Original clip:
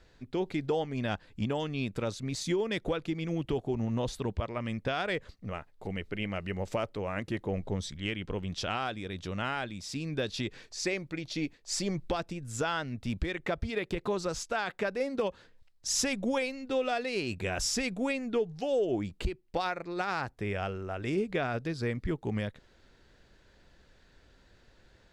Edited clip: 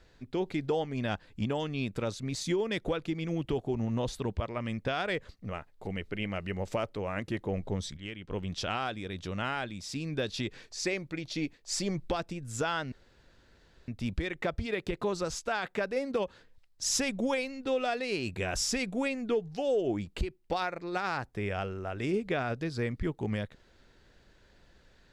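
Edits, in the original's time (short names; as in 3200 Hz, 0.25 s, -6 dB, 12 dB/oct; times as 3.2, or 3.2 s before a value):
7.97–8.31 gain -7 dB
12.92 insert room tone 0.96 s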